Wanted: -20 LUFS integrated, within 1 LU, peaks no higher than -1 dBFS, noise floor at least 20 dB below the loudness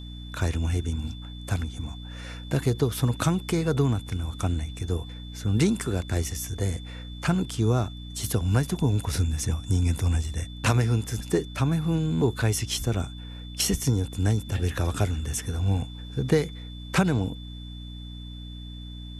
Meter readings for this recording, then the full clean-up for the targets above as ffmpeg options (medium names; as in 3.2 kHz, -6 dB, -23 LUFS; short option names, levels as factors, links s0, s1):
hum 60 Hz; highest harmonic 300 Hz; hum level -38 dBFS; steady tone 3.5 kHz; tone level -46 dBFS; loudness -27.0 LUFS; peak level -9.0 dBFS; loudness target -20.0 LUFS
-> -af "bandreject=f=60:t=h:w=6,bandreject=f=120:t=h:w=6,bandreject=f=180:t=h:w=6,bandreject=f=240:t=h:w=6,bandreject=f=300:t=h:w=6"
-af "bandreject=f=3500:w=30"
-af "volume=2.24"